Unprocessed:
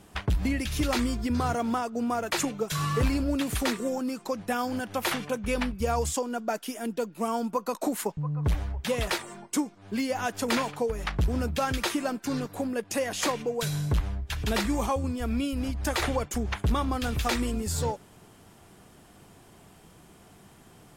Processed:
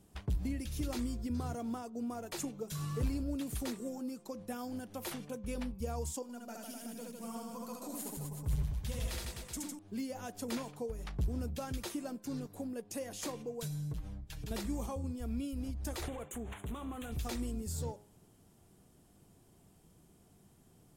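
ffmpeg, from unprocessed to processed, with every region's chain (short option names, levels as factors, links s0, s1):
-filter_complex "[0:a]asettb=1/sr,asplit=3[s0][s1][s2];[s0]atrim=end=6.224[s3];[s1]atrim=start=6.22:end=9.79,asetpts=PTS-STARTPTS,afade=t=in:d=0.004:c=qsin,afade=t=out:st=3.566:d=0.004:c=qsin,equalizer=f=410:t=o:w=2.3:g=-9,aecho=1:1:70|154|254.8|375.8|520.9:0.794|0.631|0.501|0.398|0.316,atrim=end_sample=157437[s4];[s2]atrim=start=9.786[s5];[s3][s4]acrossfade=d=0.004:c1=hsin:c2=qsin[s6];[s6][s5]acrossfade=d=0.004:c1=qsin:c2=hsin,asettb=1/sr,asplit=3[s7][s8][s9];[s7]atrim=end=13.664[s10];[s8]atrim=start=13.66:end=14.51,asetpts=PTS-STARTPTS,afade=t=in:d=0.004:c=qsin,afade=t=out:st=0.846:d=0.004:c=qsin,aecho=1:1:6.4:0.69,atrim=end_sample=37485,acompressor=threshold=0.0316:ratio=2.5:attack=3.2:release=140:knee=1:detection=peak[s11];[s9]atrim=start=14.506[s12];[s10][s11]acrossfade=d=0.004:c1=hsin:c2=qsin[s13];[s13][s12]acrossfade=d=0.004:c1=qsin:c2=hsin,asettb=1/sr,asplit=3[s14][s15][s16];[s14]atrim=end=16.084[s17];[s15]atrim=start=16.08:end=17.12,asetpts=PTS-STARTPTS,afade=t=in:d=0.004:c=qsin,afade=t=out:st=1.036:d=0.004:c=qsin,asplit=2[s18][s19];[s19]highpass=f=720:p=1,volume=7.94,asoftclip=type=tanh:threshold=0.15[s20];[s18][s20]amix=inputs=2:normalize=0,lowpass=f=6700:p=1,volume=0.501,acompressor=threshold=0.0355:ratio=2.5:attack=3.2:release=140:knee=1:detection=peak,asuperstop=centerf=5000:order=4:qfactor=1.3[s21];[s16]atrim=start=17.116[s22];[s17][s21]acrossfade=d=0.004:c1=hsin:c2=qsin[s23];[s23][s22]acrossfade=d=0.004:c1=qsin:c2=hsin,equalizer=f=1700:t=o:w=3:g=-11,bandreject=f=103.9:t=h:w=4,bandreject=f=207.8:t=h:w=4,bandreject=f=311.7:t=h:w=4,bandreject=f=415.6:t=h:w=4,bandreject=f=519.5:t=h:w=4,bandreject=f=623.4:t=h:w=4,bandreject=f=727.3:t=h:w=4,bandreject=f=831.2:t=h:w=4,bandreject=f=935.1:t=h:w=4,bandreject=f=1039:t=h:w=4,bandreject=f=1142.9:t=h:w=4,volume=0.422"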